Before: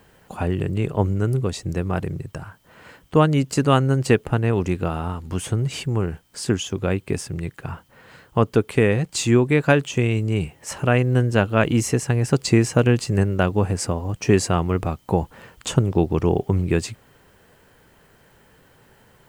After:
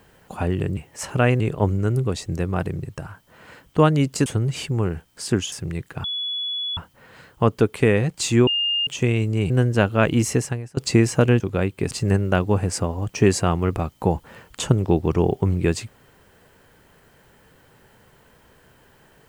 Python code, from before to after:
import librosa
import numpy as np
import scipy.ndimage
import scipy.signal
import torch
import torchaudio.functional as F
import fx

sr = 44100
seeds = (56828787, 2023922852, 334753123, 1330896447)

y = fx.edit(x, sr, fx.cut(start_s=3.63, length_s=1.8),
    fx.move(start_s=6.69, length_s=0.51, to_s=12.98),
    fx.insert_tone(at_s=7.72, length_s=0.73, hz=3400.0, db=-24.0),
    fx.bleep(start_s=9.42, length_s=0.4, hz=2820.0, db=-19.0),
    fx.move(start_s=10.45, length_s=0.63, to_s=0.77),
    fx.fade_out_to(start_s=12.01, length_s=0.34, curve='qua', floor_db=-23.5), tone=tone)